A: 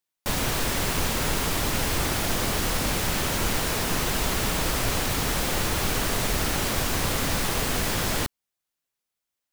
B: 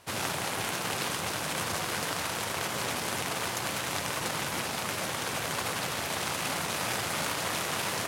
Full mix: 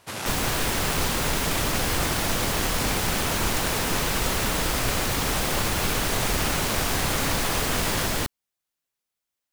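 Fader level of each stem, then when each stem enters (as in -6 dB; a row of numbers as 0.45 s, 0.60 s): 0.0 dB, 0.0 dB; 0.00 s, 0.00 s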